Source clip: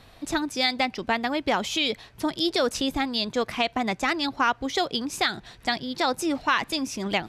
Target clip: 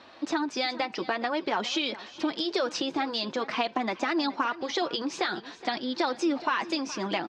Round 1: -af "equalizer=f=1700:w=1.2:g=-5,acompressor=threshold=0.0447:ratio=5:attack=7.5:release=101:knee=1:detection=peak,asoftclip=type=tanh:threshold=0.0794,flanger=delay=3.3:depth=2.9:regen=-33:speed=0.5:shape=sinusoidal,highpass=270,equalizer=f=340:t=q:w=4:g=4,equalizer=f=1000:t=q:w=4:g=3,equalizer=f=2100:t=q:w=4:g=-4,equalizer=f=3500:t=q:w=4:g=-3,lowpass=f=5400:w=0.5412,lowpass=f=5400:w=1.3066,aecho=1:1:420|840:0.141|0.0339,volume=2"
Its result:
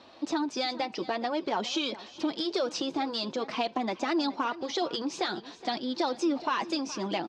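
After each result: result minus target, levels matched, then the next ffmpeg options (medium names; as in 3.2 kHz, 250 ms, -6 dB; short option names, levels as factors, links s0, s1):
saturation: distortion +16 dB; 2 kHz band -4.0 dB
-af "equalizer=f=1700:w=1.2:g=-5,acompressor=threshold=0.0447:ratio=5:attack=7.5:release=101:knee=1:detection=peak,asoftclip=type=tanh:threshold=0.266,flanger=delay=3.3:depth=2.9:regen=-33:speed=0.5:shape=sinusoidal,highpass=270,equalizer=f=340:t=q:w=4:g=4,equalizer=f=1000:t=q:w=4:g=3,equalizer=f=2100:t=q:w=4:g=-4,equalizer=f=3500:t=q:w=4:g=-3,lowpass=f=5400:w=0.5412,lowpass=f=5400:w=1.3066,aecho=1:1:420|840:0.141|0.0339,volume=2"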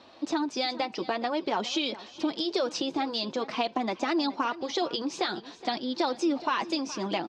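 2 kHz band -3.5 dB
-af "equalizer=f=1700:w=1.2:g=2.5,acompressor=threshold=0.0447:ratio=5:attack=7.5:release=101:knee=1:detection=peak,asoftclip=type=tanh:threshold=0.266,flanger=delay=3.3:depth=2.9:regen=-33:speed=0.5:shape=sinusoidal,highpass=270,equalizer=f=340:t=q:w=4:g=4,equalizer=f=1000:t=q:w=4:g=3,equalizer=f=2100:t=q:w=4:g=-4,equalizer=f=3500:t=q:w=4:g=-3,lowpass=f=5400:w=0.5412,lowpass=f=5400:w=1.3066,aecho=1:1:420|840:0.141|0.0339,volume=2"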